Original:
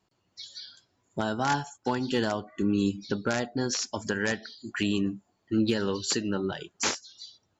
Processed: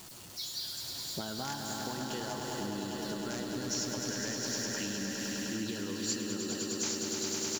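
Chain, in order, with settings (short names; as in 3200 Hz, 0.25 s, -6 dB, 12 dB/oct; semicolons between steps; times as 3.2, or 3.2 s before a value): zero-crossing step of -42.5 dBFS; in parallel at -9 dB: short-mantissa float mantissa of 2-bit; on the sum: low shelf 120 Hz -4.5 dB; swelling echo 0.102 s, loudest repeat 5, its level -7 dB; compressor 6:1, threshold -28 dBFS, peak gain reduction 12 dB; tone controls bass +4 dB, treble +11 dB; on a send: echo 0.803 s -8 dB; on the sum: gain -8.5 dB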